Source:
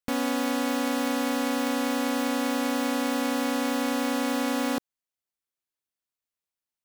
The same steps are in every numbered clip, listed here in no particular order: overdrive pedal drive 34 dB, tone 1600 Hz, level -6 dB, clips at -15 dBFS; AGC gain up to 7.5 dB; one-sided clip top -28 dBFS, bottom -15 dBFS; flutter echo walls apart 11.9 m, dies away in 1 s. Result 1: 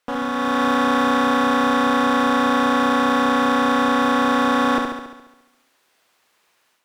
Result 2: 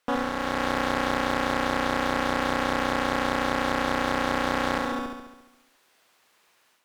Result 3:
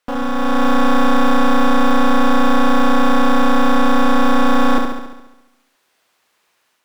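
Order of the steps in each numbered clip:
overdrive pedal > one-sided clip > flutter echo > AGC; overdrive pedal > flutter echo > one-sided clip > AGC; one-sided clip > overdrive pedal > AGC > flutter echo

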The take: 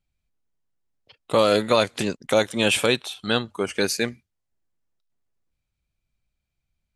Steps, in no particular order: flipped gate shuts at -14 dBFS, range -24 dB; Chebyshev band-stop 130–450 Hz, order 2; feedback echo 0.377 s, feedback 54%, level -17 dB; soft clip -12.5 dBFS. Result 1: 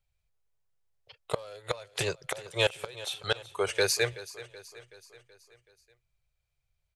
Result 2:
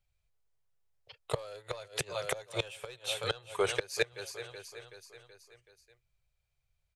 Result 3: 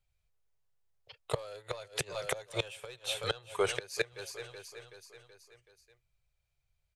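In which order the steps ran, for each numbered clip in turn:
Chebyshev band-stop > soft clip > flipped gate > feedback echo; feedback echo > soft clip > flipped gate > Chebyshev band-stop; soft clip > feedback echo > flipped gate > Chebyshev band-stop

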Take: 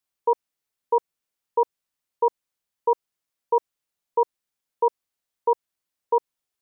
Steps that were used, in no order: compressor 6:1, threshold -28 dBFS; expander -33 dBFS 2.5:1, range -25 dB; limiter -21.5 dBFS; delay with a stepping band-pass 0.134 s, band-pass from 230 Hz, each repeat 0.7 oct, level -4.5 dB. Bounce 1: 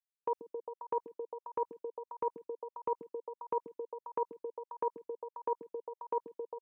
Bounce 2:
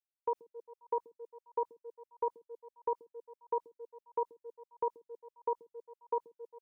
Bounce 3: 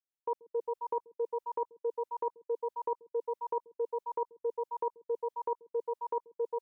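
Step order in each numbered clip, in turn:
expander > compressor > delay with a stepping band-pass > limiter; limiter > delay with a stepping band-pass > expander > compressor; delay with a stepping band-pass > compressor > limiter > expander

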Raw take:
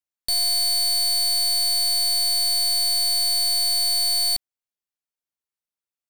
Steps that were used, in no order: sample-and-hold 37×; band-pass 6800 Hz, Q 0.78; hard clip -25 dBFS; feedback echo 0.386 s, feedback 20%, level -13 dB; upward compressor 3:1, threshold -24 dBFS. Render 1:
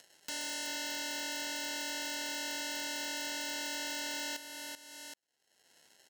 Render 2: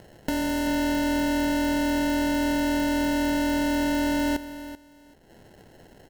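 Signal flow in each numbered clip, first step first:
sample-and-hold > feedback echo > upward compressor > band-pass > hard clip; band-pass > hard clip > upward compressor > sample-and-hold > feedback echo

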